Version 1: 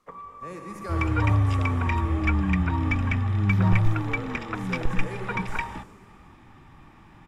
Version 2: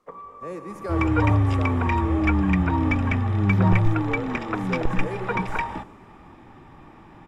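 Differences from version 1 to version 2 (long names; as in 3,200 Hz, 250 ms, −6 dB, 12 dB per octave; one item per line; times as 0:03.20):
speech: send −7.5 dB
first sound −3.5 dB
master: add parametric band 490 Hz +9 dB 2.2 octaves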